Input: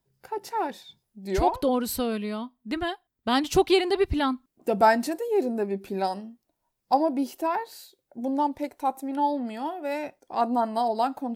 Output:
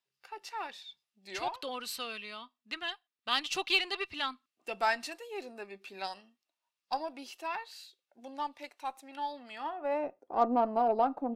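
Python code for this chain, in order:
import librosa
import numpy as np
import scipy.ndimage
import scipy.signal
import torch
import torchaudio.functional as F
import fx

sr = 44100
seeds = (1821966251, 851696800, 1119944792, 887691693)

y = fx.small_body(x, sr, hz=(1200.0, 2700.0), ring_ms=45, db=10)
y = fx.filter_sweep_bandpass(y, sr, from_hz=3200.0, to_hz=470.0, start_s=9.48, end_s=10.07, q=1.0)
y = fx.cheby_harmonics(y, sr, harmonics=(8,), levels_db=(-34,), full_scale_db=-13.5)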